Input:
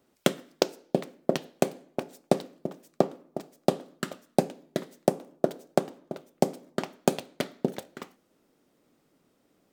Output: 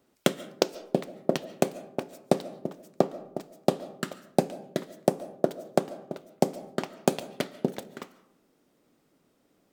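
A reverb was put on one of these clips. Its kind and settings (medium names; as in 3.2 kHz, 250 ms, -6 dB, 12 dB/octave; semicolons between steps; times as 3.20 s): algorithmic reverb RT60 0.67 s, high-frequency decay 0.45×, pre-delay 100 ms, DRR 17.5 dB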